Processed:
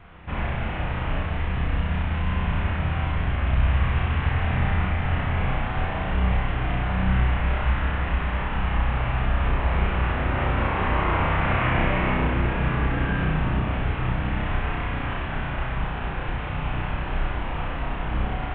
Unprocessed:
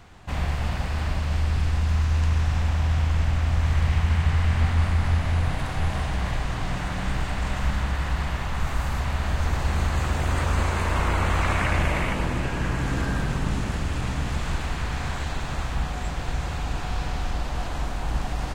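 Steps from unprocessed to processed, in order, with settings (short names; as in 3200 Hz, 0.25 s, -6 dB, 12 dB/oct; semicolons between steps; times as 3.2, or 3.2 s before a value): CVSD 16 kbps; on a send: flutter echo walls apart 5.5 m, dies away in 0.71 s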